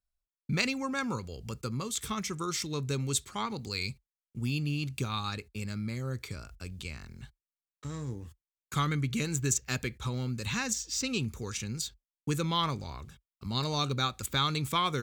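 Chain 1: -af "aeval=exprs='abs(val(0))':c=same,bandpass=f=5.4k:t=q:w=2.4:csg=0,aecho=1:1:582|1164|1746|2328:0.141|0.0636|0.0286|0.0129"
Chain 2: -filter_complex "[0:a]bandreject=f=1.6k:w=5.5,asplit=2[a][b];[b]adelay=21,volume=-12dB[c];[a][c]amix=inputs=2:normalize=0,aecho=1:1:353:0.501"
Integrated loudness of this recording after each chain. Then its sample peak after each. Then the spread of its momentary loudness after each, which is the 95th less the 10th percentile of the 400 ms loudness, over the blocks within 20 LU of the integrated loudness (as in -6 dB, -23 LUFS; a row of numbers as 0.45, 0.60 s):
-46.0, -32.0 LUFS; -23.0, -13.0 dBFS; 17, 12 LU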